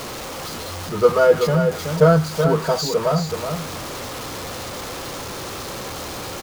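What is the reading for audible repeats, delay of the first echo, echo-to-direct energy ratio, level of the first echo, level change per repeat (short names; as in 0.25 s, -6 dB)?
1, 0.377 s, -7.0 dB, -7.0 dB, no steady repeat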